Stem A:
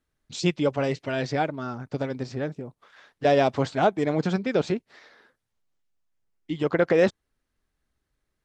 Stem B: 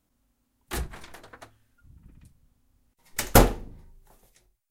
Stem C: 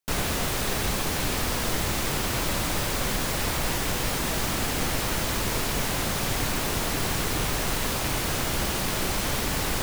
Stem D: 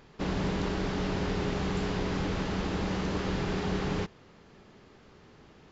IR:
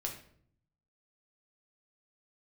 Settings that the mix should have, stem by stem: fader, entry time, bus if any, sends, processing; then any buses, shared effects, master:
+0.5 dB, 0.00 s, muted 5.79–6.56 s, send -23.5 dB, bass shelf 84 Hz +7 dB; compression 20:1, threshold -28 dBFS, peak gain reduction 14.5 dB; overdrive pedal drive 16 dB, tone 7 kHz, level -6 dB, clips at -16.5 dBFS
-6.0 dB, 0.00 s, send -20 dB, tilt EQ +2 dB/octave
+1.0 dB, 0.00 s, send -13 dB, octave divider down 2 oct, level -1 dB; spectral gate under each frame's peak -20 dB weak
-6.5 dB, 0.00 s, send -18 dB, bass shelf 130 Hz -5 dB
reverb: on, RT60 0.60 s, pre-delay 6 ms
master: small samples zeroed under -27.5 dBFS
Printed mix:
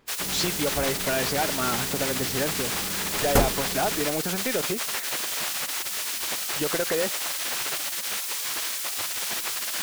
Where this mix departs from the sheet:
stem B: missing tilt EQ +2 dB/octave; master: missing small samples zeroed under -27.5 dBFS

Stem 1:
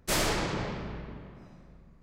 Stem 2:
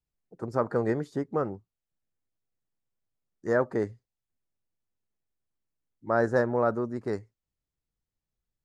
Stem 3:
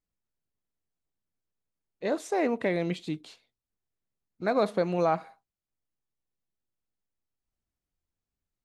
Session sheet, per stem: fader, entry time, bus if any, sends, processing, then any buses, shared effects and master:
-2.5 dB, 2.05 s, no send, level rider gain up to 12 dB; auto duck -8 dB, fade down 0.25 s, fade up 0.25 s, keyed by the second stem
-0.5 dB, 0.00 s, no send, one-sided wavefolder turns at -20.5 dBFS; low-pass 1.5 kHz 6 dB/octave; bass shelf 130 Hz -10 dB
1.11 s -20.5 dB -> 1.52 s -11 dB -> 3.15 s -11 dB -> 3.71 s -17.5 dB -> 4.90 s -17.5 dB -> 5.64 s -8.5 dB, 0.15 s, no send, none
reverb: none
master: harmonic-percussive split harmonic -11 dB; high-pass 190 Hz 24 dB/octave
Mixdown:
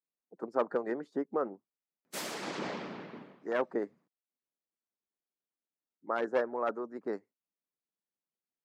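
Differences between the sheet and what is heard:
stem 1 -2.5 dB -> -9.0 dB; stem 3: muted

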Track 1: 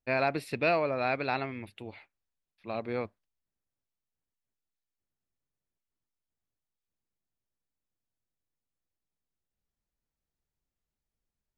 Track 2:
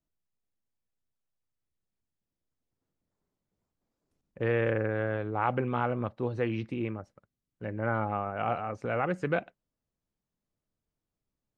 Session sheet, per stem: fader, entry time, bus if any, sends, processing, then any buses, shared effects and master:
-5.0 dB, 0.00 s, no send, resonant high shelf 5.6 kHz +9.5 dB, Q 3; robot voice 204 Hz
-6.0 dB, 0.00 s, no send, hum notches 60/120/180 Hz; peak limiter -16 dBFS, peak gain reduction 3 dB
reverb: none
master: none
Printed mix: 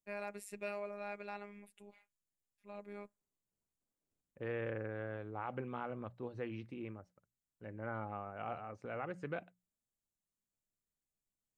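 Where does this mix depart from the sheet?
stem 1 -5.0 dB -> -12.0 dB; stem 2 -6.0 dB -> -12.0 dB

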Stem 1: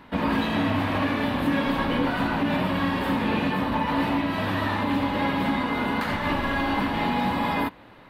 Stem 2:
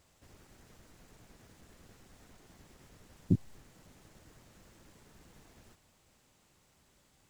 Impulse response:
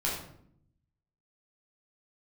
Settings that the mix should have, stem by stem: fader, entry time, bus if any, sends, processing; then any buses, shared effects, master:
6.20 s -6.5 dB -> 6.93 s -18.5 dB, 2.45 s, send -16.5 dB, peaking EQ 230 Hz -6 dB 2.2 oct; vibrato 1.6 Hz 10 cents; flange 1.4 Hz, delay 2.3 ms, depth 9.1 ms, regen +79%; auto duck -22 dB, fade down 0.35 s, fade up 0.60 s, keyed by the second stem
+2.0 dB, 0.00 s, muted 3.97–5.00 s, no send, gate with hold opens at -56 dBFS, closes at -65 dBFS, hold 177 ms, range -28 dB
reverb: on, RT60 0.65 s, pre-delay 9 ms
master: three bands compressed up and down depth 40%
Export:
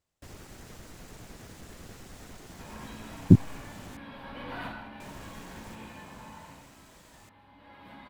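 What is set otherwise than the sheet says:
stem 2 +2.0 dB -> +11.5 dB; master: missing three bands compressed up and down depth 40%

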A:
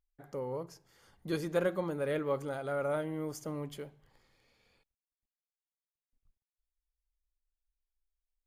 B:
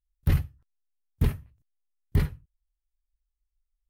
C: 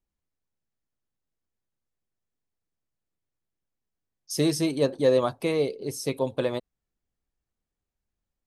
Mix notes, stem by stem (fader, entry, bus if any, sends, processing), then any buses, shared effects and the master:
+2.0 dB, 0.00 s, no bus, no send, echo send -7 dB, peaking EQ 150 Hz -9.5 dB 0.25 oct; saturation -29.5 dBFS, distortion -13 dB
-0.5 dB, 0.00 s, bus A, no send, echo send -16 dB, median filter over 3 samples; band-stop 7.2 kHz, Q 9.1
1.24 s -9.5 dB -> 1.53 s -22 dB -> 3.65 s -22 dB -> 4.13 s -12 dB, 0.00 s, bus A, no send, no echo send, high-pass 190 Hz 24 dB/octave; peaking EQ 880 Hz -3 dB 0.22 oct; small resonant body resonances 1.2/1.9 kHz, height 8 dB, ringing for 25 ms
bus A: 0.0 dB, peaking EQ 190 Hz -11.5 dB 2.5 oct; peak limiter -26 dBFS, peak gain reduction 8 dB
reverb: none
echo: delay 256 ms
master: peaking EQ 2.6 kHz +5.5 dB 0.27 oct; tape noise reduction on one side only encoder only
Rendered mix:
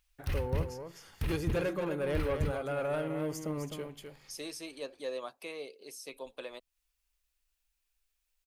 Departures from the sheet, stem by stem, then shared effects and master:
stem A: missing peaking EQ 150 Hz -9.5 dB 0.25 oct; stem B -0.5 dB -> +6.0 dB; stem C: missing small resonant body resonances 1.2/1.9 kHz, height 8 dB, ringing for 25 ms

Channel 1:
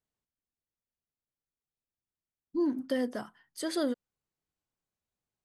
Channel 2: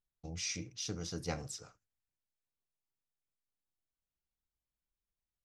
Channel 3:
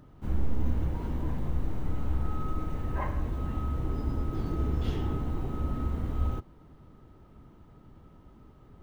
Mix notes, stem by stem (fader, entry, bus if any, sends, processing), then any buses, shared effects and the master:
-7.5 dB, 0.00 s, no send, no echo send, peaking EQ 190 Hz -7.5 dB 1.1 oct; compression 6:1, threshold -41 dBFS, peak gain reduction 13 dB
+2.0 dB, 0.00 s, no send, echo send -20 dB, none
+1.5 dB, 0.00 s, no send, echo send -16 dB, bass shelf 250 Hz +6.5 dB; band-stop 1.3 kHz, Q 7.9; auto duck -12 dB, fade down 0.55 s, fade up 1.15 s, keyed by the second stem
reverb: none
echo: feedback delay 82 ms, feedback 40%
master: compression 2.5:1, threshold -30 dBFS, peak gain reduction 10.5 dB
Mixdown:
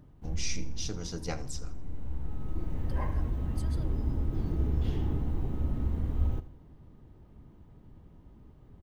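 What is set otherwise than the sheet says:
stem 3 +1.5 dB -> -5.0 dB; master: missing compression 2.5:1, threshold -30 dBFS, peak gain reduction 10.5 dB

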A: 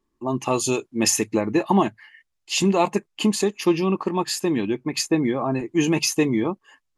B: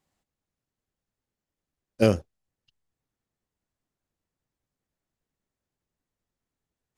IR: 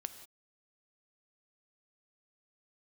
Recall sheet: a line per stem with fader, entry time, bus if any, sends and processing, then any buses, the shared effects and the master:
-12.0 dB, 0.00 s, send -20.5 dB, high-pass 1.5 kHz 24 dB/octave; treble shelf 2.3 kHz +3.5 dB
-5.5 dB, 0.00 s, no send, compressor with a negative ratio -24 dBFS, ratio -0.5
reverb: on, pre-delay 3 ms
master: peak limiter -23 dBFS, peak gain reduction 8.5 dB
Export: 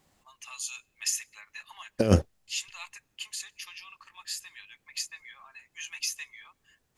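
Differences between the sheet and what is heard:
stem B -5.5 dB -> +5.5 dB; master: missing peak limiter -23 dBFS, peak gain reduction 8.5 dB

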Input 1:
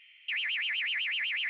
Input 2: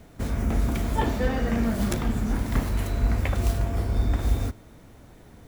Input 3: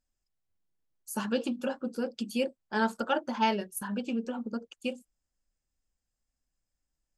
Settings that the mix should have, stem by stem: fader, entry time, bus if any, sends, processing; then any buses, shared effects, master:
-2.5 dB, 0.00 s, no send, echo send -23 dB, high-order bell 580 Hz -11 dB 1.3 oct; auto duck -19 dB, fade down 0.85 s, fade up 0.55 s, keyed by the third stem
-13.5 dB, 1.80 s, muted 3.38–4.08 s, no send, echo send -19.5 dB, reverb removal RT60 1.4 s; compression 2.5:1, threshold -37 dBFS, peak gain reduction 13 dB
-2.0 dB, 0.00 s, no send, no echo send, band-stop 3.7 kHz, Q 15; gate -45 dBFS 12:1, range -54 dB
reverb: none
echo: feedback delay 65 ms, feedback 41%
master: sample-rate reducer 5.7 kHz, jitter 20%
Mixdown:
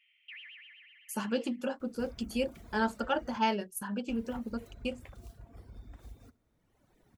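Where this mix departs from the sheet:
stem 1 -2.5 dB -> -12.5 dB; master: missing sample-rate reducer 5.7 kHz, jitter 20%

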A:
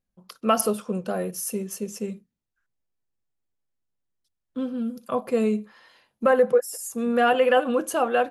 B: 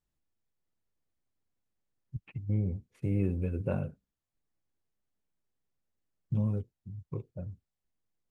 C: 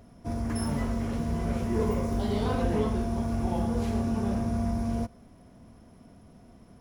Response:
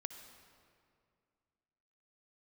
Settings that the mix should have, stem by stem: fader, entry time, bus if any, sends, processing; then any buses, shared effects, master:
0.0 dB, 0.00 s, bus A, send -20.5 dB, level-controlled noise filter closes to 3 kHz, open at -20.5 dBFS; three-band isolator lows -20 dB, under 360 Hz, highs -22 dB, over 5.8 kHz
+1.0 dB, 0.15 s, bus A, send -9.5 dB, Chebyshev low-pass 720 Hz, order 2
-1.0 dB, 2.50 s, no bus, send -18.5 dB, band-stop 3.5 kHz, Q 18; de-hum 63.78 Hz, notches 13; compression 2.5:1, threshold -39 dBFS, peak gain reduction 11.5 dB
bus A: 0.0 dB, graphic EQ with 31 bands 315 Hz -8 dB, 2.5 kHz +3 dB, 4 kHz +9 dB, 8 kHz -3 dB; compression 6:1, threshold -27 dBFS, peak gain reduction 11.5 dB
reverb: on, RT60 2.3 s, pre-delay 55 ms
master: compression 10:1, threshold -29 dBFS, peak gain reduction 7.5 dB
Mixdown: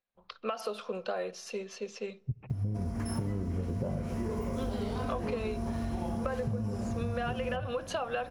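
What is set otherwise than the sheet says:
stem B +1.0 dB -> +12.0 dB; stem C -1.0 dB -> +5.5 dB

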